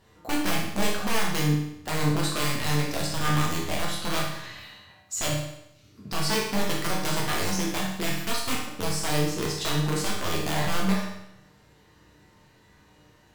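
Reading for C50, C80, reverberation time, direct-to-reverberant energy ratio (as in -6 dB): 2.5 dB, 6.0 dB, 0.80 s, -4.0 dB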